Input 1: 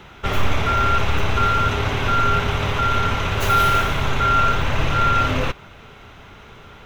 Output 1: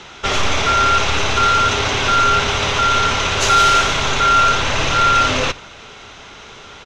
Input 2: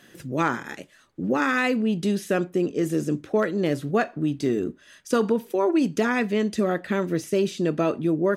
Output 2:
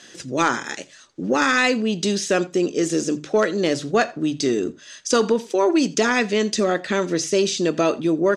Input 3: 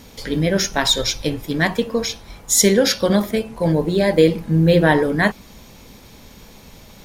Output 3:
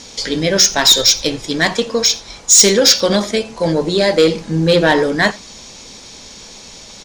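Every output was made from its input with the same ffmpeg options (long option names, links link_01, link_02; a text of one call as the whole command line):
ffmpeg -i in.wav -filter_complex "[0:a]lowpass=frequency=6600:width=0.5412,lowpass=frequency=6600:width=1.3066,bass=frequency=250:gain=-7,treble=frequency=4000:gain=15,bandreject=frequency=50:width_type=h:width=6,bandreject=frequency=100:width_type=h:width=6,bandreject=frequency=150:width_type=h:width=6,acontrast=81,asplit=2[link_01][link_02];[link_02]aecho=0:1:84:0.0708[link_03];[link_01][link_03]amix=inputs=2:normalize=0,volume=-2dB" out.wav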